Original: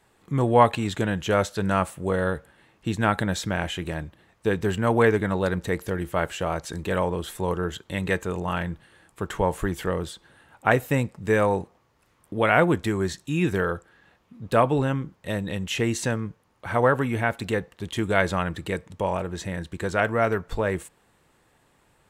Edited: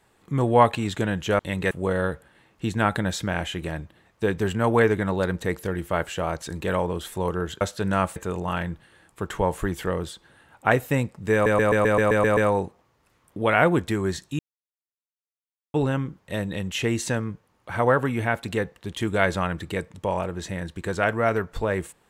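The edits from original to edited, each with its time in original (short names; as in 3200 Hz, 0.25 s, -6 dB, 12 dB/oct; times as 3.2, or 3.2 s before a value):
1.39–1.94 swap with 7.84–8.16
11.33 stutter 0.13 s, 9 plays
13.35–14.7 mute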